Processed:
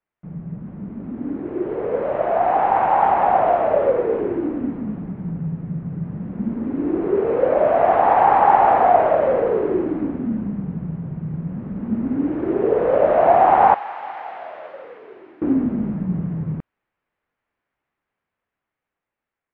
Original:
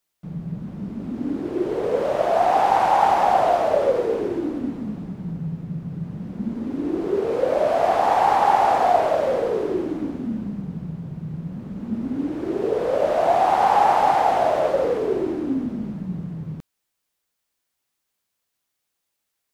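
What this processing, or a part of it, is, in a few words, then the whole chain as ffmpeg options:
action camera in a waterproof case: -filter_complex "[0:a]asettb=1/sr,asplit=3[link_01][link_02][link_03];[link_01]atrim=end=13.744[link_04];[link_02]atrim=start=13.74:end=15.42,asetpts=PTS-STARTPTS,afade=type=in:duration=0.004:curve=qsin,afade=type=out:start_time=1.676:duration=0.004:curve=qsin,aderivative[link_05];[link_03]atrim=start=15.416[link_06];[link_04][link_05]acrossfade=duration=0.004:curve1=hsin:curve2=qsin[link_07];[link_07][link_06]acrossfade=duration=0.004:curve1=qsin:curve2=hsin,lowpass=frequency=2200:width=0.5412,lowpass=frequency=2200:width=1.3066,dynaudnorm=framelen=880:gausssize=7:maxgain=14dB,volume=-1dB" -ar 32000 -c:a aac -b:a 48k

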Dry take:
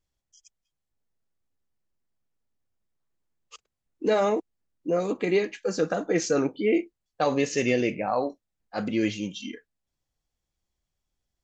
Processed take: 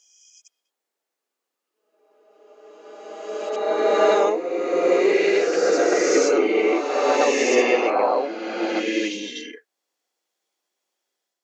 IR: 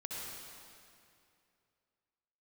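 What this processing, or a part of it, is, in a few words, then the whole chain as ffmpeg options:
ghost voice: -filter_complex "[0:a]areverse[link_01];[1:a]atrim=start_sample=2205[link_02];[link_01][link_02]afir=irnorm=-1:irlink=0,areverse,highpass=frequency=340:width=0.5412,highpass=frequency=340:width=1.3066,volume=8dB"

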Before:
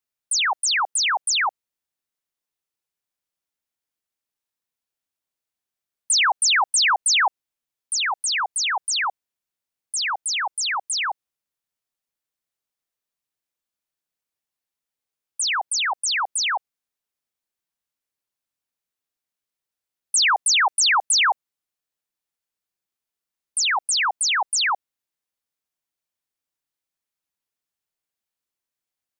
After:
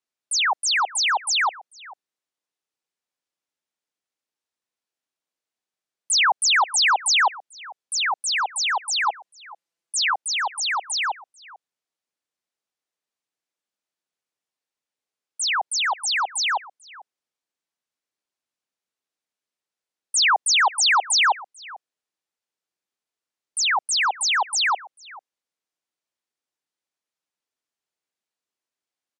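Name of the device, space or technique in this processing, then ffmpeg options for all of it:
filter by subtraction: -filter_complex "[0:a]lowpass=8300,asettb=1/sr,asplit=3[link_01][link_02][link_03];[link_01]atrim=end=9.064[link_04];[link_02]atrim=start=9.06:end=10.14,asetpts=PTS-STARTPTS,afade=type=in:duration=0.004:curve=qsin,afade=type=out:start_time=1.076:duration=0.004:curve=qsin,aecho=1:1:5.9:0.95,atrim=end_sample=47628[link_05];[link_03]atrim=start=10.136[link_06];[link_04][link_05]acrossfade=duration=0.004:curve1=hsin:curve2=qsin[link_07];[link_07][link_06]acrossfade=duration=0.004:curve1=qsin:curve2=hsin,asplit=2[link_08][link_09];[link_09]adelay=443.1,volume=-19dB,highshelf=frequency=4000:gain=-9.97[link_10];[link_08][link_10]amix=inputs=2:normalize=0,asplit=2[link_11][link_12];[link_12]lowpass=340,volume=-1[link_13];[link_11][link_13]amix=inputs=2:normalize=0"

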